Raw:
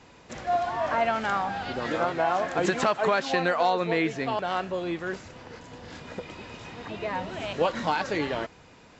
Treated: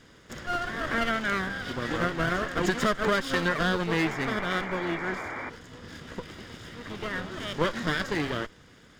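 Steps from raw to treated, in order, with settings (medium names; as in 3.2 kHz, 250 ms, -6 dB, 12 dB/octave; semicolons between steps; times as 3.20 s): comb filter that takes the minimum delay 0.6 ms; painted sound noise, 3.98–5.50 s, 230–2400 Hz -36 dBFS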